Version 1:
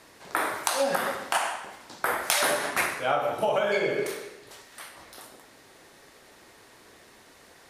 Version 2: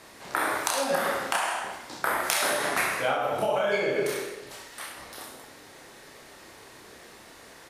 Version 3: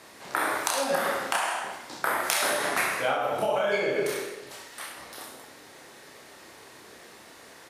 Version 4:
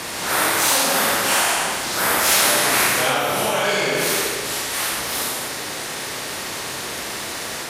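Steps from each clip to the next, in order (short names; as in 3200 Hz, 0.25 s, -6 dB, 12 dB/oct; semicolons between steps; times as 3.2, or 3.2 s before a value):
compressor 5:1, threshold -27 dBFS, peak gain reduction 7 dB; on a send: reverse bouncing-ball echo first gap 30 ms, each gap 1.2×, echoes 5; on the sum: gain +2.5 dB
HPF 110 Hz 6 dB/oct
phase scrambler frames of 0.2 s; spectral compressor 2:1; gain +9 dB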